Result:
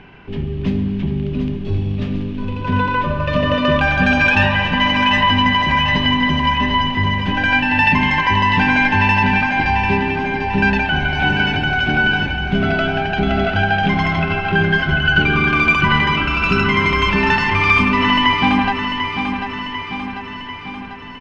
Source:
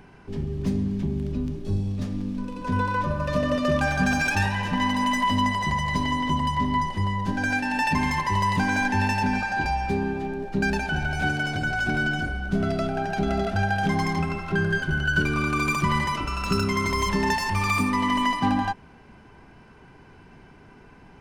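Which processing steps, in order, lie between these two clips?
synth low-pass 2900 Hz, resonance Q 2.7; on a send: feedback echo 0.744 s, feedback 59%, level -7.5 dB; on the sum: gain +6 dB

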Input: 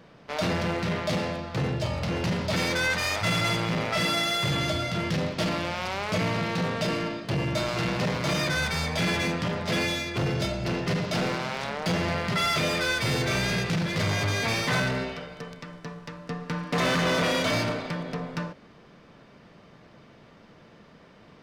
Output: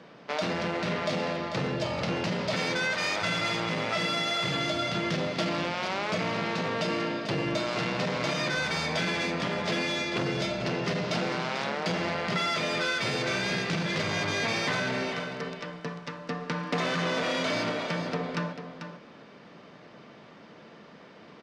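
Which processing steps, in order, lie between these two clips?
three-band isolator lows -18 dB, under 150 Hz, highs -19 dB, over 7600 Hz; compressor, threshold -29 dBFS, peak gain reduction 8 dB; on a send: echo 0.443 s -9 dB; on the sum: gain +3 dB

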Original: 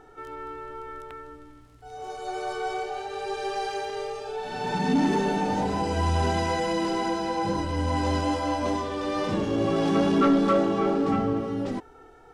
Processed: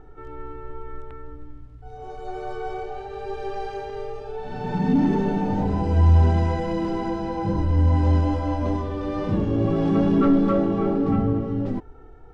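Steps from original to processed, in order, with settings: RIAA curve playback; gain -3 dB

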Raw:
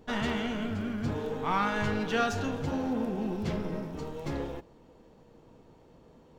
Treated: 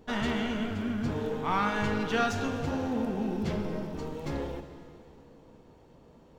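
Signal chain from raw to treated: plate-style reverb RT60 2.8 s, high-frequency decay 0.95×, DRR 8 dB

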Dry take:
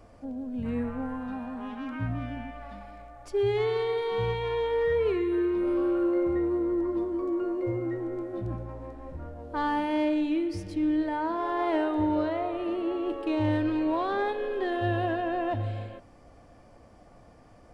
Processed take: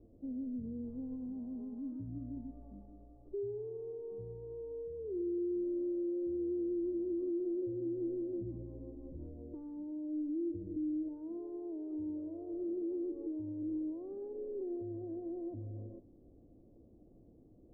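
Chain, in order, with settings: compressor, threshold -32 dBFS, peak gain reduction 10 dB; limiter -30 dBFS, peak gain reduction 7 dB; ladder low-pass 420 Hz, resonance 50%; gain +2 dB

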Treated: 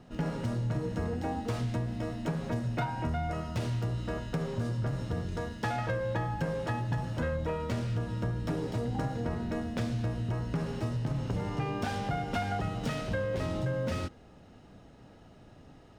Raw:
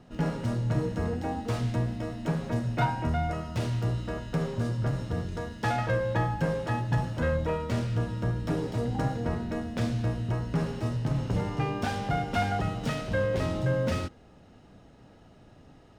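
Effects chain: compressor, threshold -28 dBFS, peak gain reduction 8 dB

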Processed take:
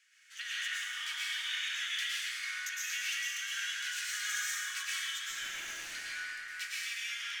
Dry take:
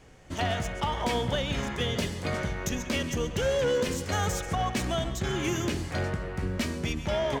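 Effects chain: steep high-pass 1500 Hz 48 dB/oct; 5.3–5.76 tube stage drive 39 dB, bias 0.55; plate-style reverb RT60 2.6 s, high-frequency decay 0.55×, pre-delay 95 ms, DRR -8 dB; gain -6.5 dB

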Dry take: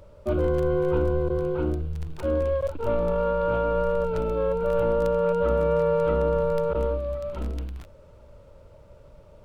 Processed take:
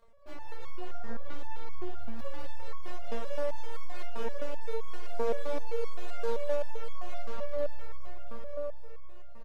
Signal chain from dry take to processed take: diffused feedback echo 0.519 s, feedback 60%, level -9 dB; tube stage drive 34 dB, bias 0.6; crossover distortion -56 dBFS; dynamic EQ 780 Hz, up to +7 dB, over -58 dBFS, Q 4.2; half-wave rectifier; 0.77–1.25 steep low-pass 1600 Hz 36 dB/oct; 5.18–5.68 bell 400 Hz +8 dB 1.3 oct; feedback echo 0.198 s, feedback 59%, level -4 dB; stepped resonator 7.7 Hz 230–1100 Hz; gain +13.5 dB

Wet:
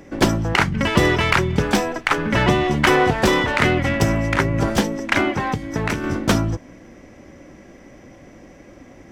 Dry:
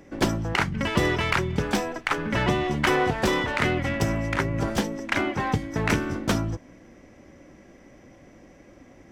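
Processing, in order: 5.36–6.04 compressor 10:1, threshold -25 dBFS, peak gain reduction 9 dB; gain +6.5 dB

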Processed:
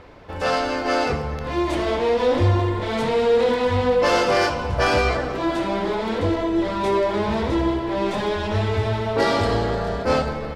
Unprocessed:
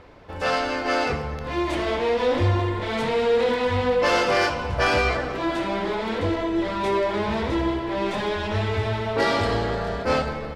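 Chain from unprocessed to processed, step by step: dynamic EQ 2200 Hz, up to -4 dB, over -38 dBFS, Q 0.84; gain +3 dB

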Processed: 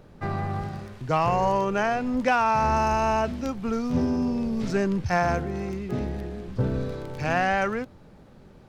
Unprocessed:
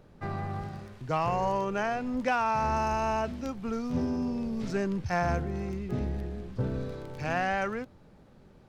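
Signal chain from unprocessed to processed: 5.17–6.48 low shelf 130 Hz -7.5 dB; gain +5.5 dB

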